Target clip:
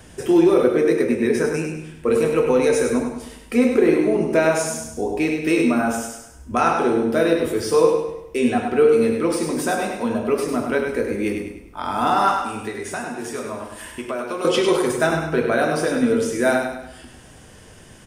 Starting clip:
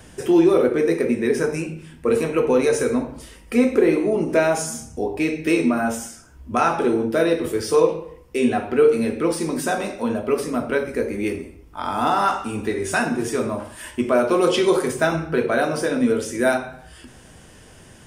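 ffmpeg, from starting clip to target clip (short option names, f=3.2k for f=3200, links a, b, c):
-filter_complex "[0:a]asettb=1/sr,asplit=3[a][b][c];[a]atrim=end=12.374[d];[b]atrim=start=12.37:end=14.45,asetpts=PTS-STARTPTS,afade=t=in:d=0.004:c=qsin,afade=t=out:st=2.076:d=0.004:c=qsin,acrossover=split=490|1000[e][f][g];[e]acompressor=threshold=-35dB:ratio=4[h];[f]acompressor=threshold=-32dB:ratio=4[i];[g]acompressor=threshold=-34dB:ratio=4[j];[h][i][j]amix=inputs=3:normalize=0[k];[c]atrim=start=14.446[l];[d][k]acrossfade=d=0.004:c1=hsin:c2=qsin[m];[m][l]acrossfade=d=0.004:c1=qsin:c2=hsin,asplit=2[n][o];[o]aecho=0:1:101|202|303|404|505:0.501|0.205|0.0842|0.0345|0.0142[p];[n][p]amix=inputs=2:normalize=0"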